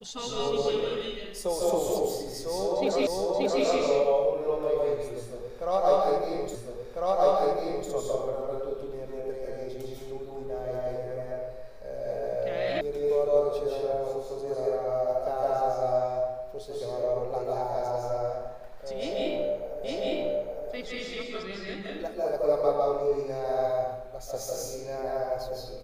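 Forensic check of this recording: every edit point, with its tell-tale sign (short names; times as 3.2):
3.07 repeat of the last 0.58 s
6.55 repeat of the last 1.35 s
12.81 sound cut off
19.84 repeat of the last 0.86 s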